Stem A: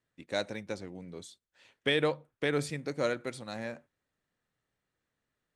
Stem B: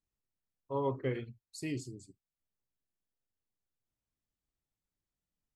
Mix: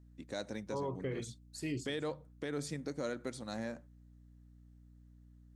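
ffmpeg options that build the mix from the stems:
-filter_complex "[0:a]equalizer=f=250:t=o:w=0.67:g=5,equalizer=f=2500:t=o:w=0.67:g=-6,equalizer=f=6300:t=o:w=0.67:g=5,aeval=exprs='val(0)+0.00178*(sin(2*PI*60*n/s)+sin(2*PI*2*60*n/s)/2+sin(2*PI*3*60*n/s)/3+sin(2*PI*4*60*n/s)/4+sin(2*PI*5*60*n/s)/5)':c=same,volume=0.75[s0];[1:a]volume=0.944[s1];[s0][s1]amix=inputs=2:normalize=0,alimiter=level_in=1.58:limit=0.0631:level=0:latency=1:release=144,volume=0.631"

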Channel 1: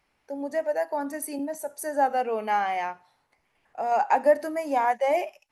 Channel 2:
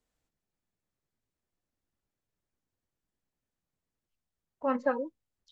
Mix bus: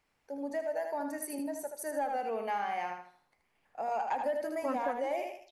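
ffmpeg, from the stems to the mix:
-filter_complex "[0:a]asoftclip=type=tanh:threshold=0.237,volume=0.501,asplit=2[s0][s1];[s1]volume=0.473[s2];[1:a]volume=0.841[s3];[s2]aecho=0:1:78|156|234|312|390:1|0.33|0.109|0.0359|0.0119[s4];[s0][s3][s4]amix=inputs=3:normalize=0,acompressor=threshold=0.0316:ratio=4"

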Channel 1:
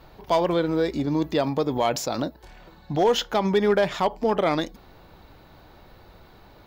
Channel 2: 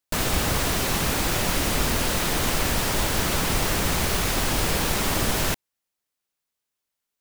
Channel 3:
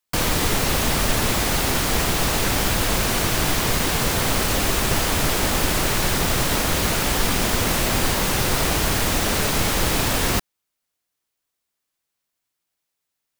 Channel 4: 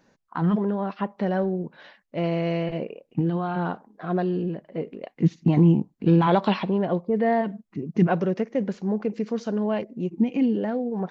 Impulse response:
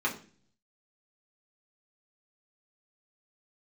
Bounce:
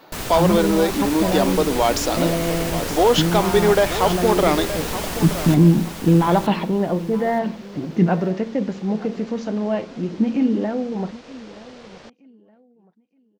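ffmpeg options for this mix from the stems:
-filter_complex "[0:a]highpass=f=220:w=0.5412,highpass=f=220:w=1.3066,acontrast=65,volume=0.841,asplit=2[s0][s1];[s1]volume=0.251[s2];[1:a]volume=0.562,asplit=2[s3][s4];[s4]volume=0.447[s5];[2:a]lowpass=f=5600:w=0.5412,lowpass=f=5600:w=1.3066,aeval=exprs='val(0)*sin(2*PI*500*n/s)':c=same,adelay=1700,volume=0.1[s6];[3:a]volume=1.33,asplit=3[s7][s8][s9];[s8]volume=0.141[s10];[s9]volume=0.112[s11];[4:a]atrim=start_sample=2205[s12];[s10][s12]afir=irnorm=-1:irlink=0[s13];[s2][s5][s11]amix=inputs=3:normalize=0,aecho=0:1:922|1844|2766|3688:1|0.25|0.0625|0.0156[s14];[s0][s3][s6][s7][s13][s14]amix=inputs=6:normalize=0"

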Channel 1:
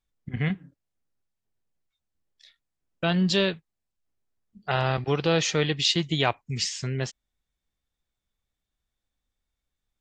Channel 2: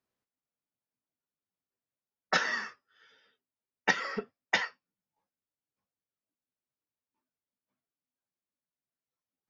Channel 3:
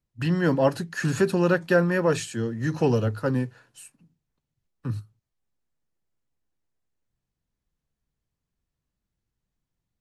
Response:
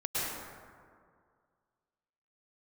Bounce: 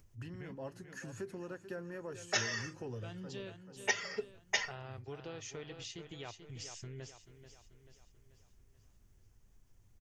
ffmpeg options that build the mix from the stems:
-filter_complex "[0:a]volume=0.2,asplit=3[s0][s1][s2];[s1]volume=0.133[s3];[1:a]highpass=510,equalizer=f=1200:w=0.74:g=-11,aecho=1:1:4.9:0.94,volume=0.841[s4];[2:a]acompressor=mode=upward:threshold=0.0112:ratio=2.5,volume=0.237,asplit=2[s5][s6];[s6]volume=0.0708[s7];[s2]apad=whole_len=441139[s8];[s5][s8]sidechaincompress=threshold=0.0126:ratio=8:attack=5.1:release=327[s9];[s0][s9]amix=inputs=2:normalize=0,lowshelf=f=66:g=11.5,acompressor=threshold=0.00447:ratio=2.5,volume=1[s10];[s3][s7]amix=inputs=2:normalize=0,aecho=0:1:436|872|1308|1744|2180|2616|3052:1|0.5|0.25|0.125|0.0625|0.0312|0.0156[s11];[s4][s10][s11]amix=inputs=3:normalize=0,equalizer=f=100:t=o:w=0.33:g=8,equalizer=f=160:t=o:w=0.33:g=-6,equalizer=f=400:t=o:w=0.33:g=4,equalizer=f=4000:t=o:w=0.33:g=-6,equalizer=f=6300:t=o:w=0.33:g=6"

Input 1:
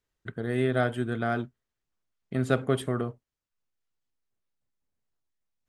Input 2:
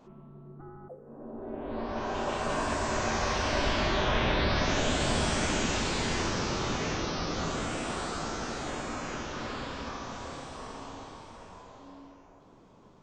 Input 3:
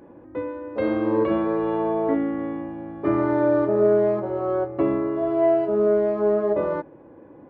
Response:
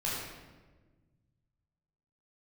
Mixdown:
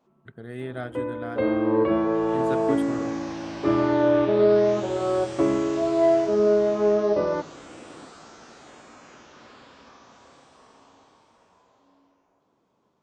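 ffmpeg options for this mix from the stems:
-filter_complex "[0:a]volume=0.398[s0];[1:a]highpass=f=220:p=1,volume=0.282[s1];[2:a]adelay=600,volume=1[s2];[s0][s1][s2]amix=inputs=3:normalize=0"

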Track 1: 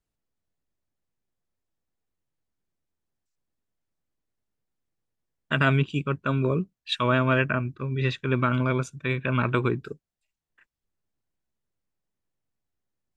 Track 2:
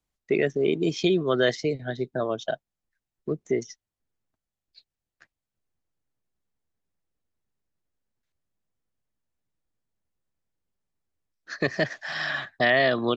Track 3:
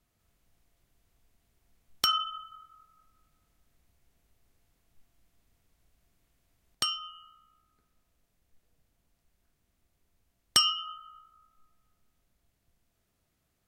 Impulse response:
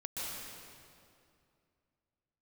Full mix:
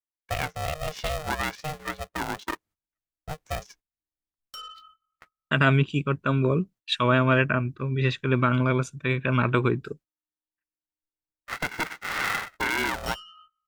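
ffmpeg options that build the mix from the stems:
-filter_complex "[0:a]agate=range=0.02:threshold=0.00447:ratio=16:detection=peak,volume=1.19,asplit=2[s0][s1];[1:a]equalizer=f=1400:w=1.4:g=15,aeval=exprs='val(0)*sgn(sin(2*PI*310*n/s))':c=same,volume=0.422[s2];[2:a]aeval=exprs='0.422*(cos(1*acos(clip(val(0)/0.422,-1,1)))-cos(1*PI/2))+0.0596*(cos(4*acos(clip(val(0)/0.422,-1,1)))-cos(4*PI/2))':c=same,asoftclip=type=tanh:threshold=0.0631,adelay=2500,volume=0.299[s3];[s1]apad=whole_len=713453[s4];[s3][s4]sidechaincompress=threshold=0.0112:ratio=3:attack=27:release=1150[s5];[s2][s5]amix=inputs=2:normalize=0,agate=range=0.1:threshold=0.002:ratio=16:detection=peak,alimiter=limit=0.141:level=0:latency=1:release=291,volume=1[s6];[s0][s6]amix=inputs=2:normalize=0"

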